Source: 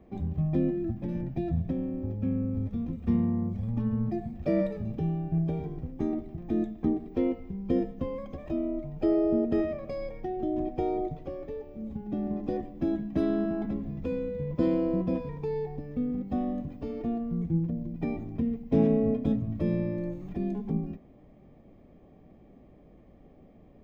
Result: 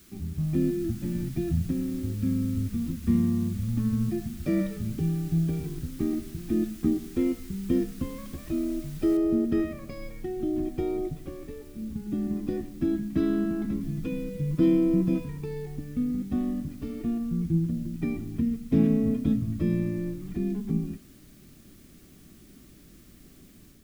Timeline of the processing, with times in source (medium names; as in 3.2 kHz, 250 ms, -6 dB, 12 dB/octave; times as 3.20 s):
9.17 s: noise floor step -54 dB -62 dB
13.80–15.25 s: comb 6.4 ms
whole clip: high-order bell 660 Hz -11.5 dB 1.3 oct; level rider gain up to 5.5 dB; trim -3 dB